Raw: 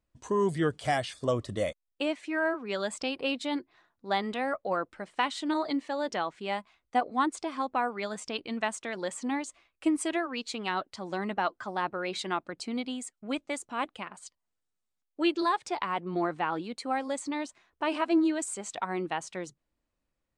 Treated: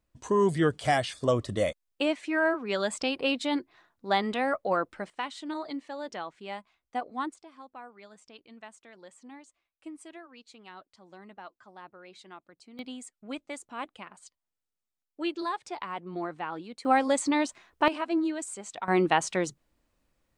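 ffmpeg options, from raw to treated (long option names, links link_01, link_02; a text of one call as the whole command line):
ffmpeg -i in.wav -af "asetnsamples=nb_out_samples=441:pad=0,asendcmd='5.1 volume volume -6dB;7.34 volume volume -16.5dB;12.79 volume volume -5dB;16.85 volume volume 7.5dB;17.88 volume volume -3dB;18.88 volume volume 9dB',volume=3dB" out.wav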